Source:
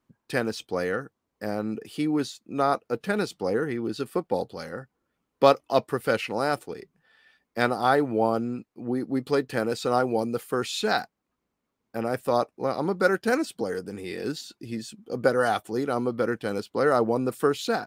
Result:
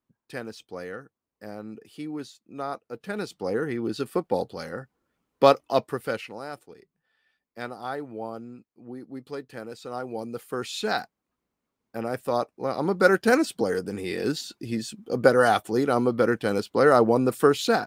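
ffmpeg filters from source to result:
ffmpeg -i in.wav -af "volume=16.5dB,afade=type=in:start_time=2.94:duration=0.93:silence=0.316228,afade=type=out:start_time=5.59:duration=0.81:silence=0.237137,afade=type=in:start_time=9.91:duration=0.95:silence=0.334965,afade=type=in:start_time=12.63:duration=0.51:silence=0.501187" out.wav

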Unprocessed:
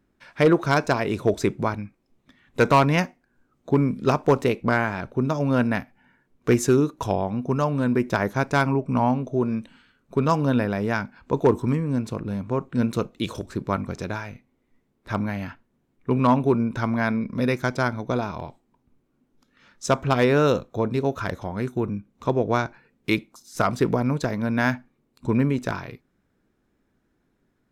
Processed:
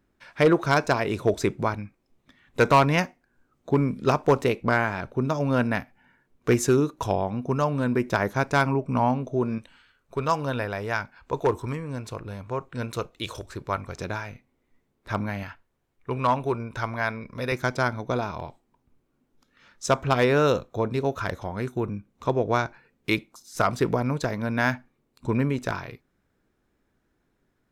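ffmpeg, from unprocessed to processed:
ffmpeg -i in.wav -af "asetnsamples=nb_out_samples=441:pad=0,asendcmd='9.58 equalizer g -13.5;13.99 equalizer g -4.5;15.43 equalizer g -14;17.52 equalizer g -4.5',equalizer=frequency=220:width_type=o:width=1.4:gain=-3.5" out.wav

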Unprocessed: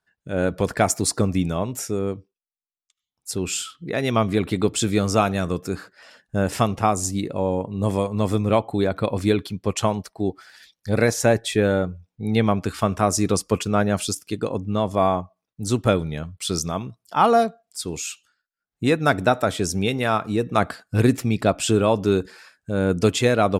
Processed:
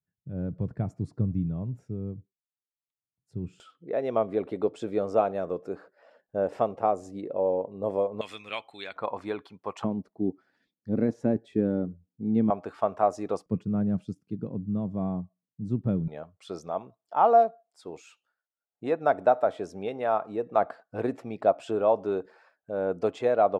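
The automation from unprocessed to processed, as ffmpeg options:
ffmpeg -i in.wav -af "asetnsamples=nb_out_samples=441:pad=0,asendcmd='3.6 bandpass f 560;8.21 bandpass f 2700;8.96 bandpass f 920;9.84 bandpass f 250;12.5 bandpass f 690;13.46 bandpass f 170;16.08 bandpass f 670',bandpass=frequency=130:width_type=q:width=2.1:csg=0" out.wav

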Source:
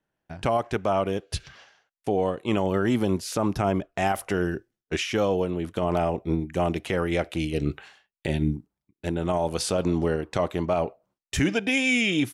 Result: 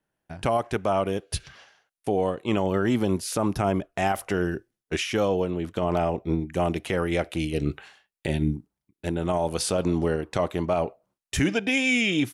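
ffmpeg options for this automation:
ffmpeg -i in.wav -af "asetnsamples=nb_out_samples=441:pad=0,asendcmd='2.34 equalizer g -2.5;3.1 equalizer g 7.5;4.01 equalizer g -1;4.52 equalizer g 6.5;5.28 equalizer g -5;6.51 equalizer g 4.5;11.53 equalizer g -2.5',equalizer=frequency=10000:width_type=o:width=0.33:gain=8" out.wav

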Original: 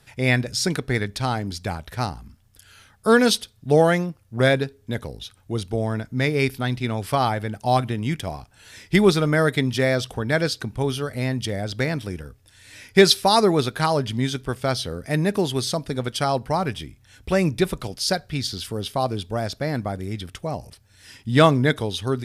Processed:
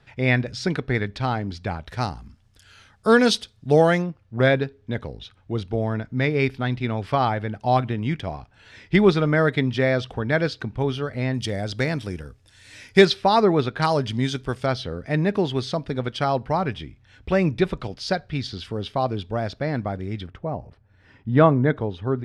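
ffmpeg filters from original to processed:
ffmpeg -i in.wav -af "asetnsamples=nb_out_samples=441:pad=0,asendcmd='1.87 lowpass f 6300;4.02 lowpass f 3300;11.34 lowpass f 7900;13.05 lowpass f 2900;13.82 lowpass f 6600;14.66 lowpass f 3400;20.27 lowpass f 1400',lowpass=3300" out.wav

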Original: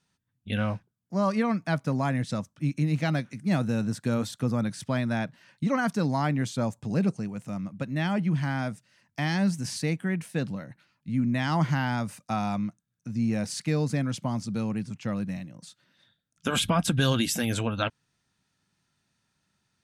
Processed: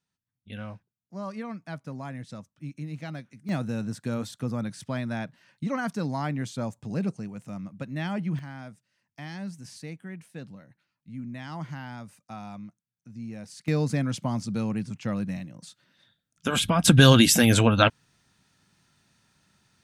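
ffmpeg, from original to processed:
ffmpeg -i in.wav -af "asetnsamples=nb_out_samples=441:pad=0,asendcmd='3.49 volume volume -3.5dB;8.39 volume volume -11.5dB;13.68 volume volume 1dB;16.84 volume volume 9dB',volume=-10.5dB" out.wav

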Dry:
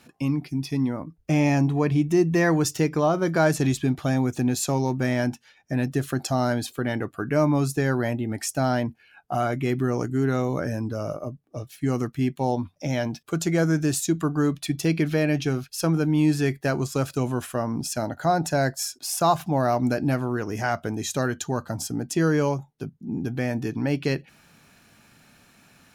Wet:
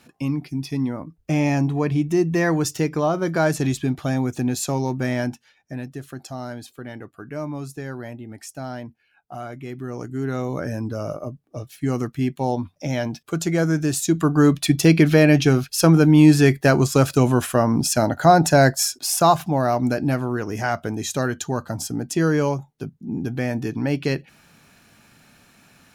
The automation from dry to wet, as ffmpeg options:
ffmpeg -i in.wav -af "volume=18dB,afade=type=out:start_time=5.17:duration=0.73:silence=0.334965,afade=type=in:start_time=9.76:duration=1.11:silence=0.298538,afade=type=in:start_time=13.95:duration=0.61:silence=0.446684,afade=type=out:start_time=18.71:duration=0.86:silence=0.473151" out.wav

